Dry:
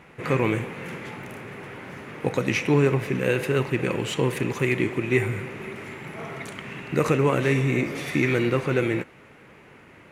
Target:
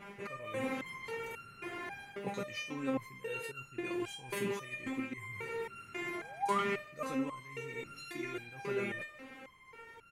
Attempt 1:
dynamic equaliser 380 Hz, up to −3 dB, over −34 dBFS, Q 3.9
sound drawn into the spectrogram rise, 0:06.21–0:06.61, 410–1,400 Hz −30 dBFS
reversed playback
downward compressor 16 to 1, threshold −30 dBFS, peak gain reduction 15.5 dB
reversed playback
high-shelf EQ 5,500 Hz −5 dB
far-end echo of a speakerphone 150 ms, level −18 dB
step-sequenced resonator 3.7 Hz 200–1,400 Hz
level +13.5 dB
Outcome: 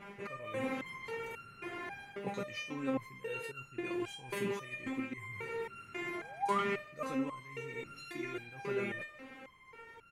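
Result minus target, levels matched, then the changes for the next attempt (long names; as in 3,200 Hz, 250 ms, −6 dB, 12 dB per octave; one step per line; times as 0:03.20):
8,000 Hz band −3.0 dB
remove: high-shelf EQ 5,500 Hz −5 dB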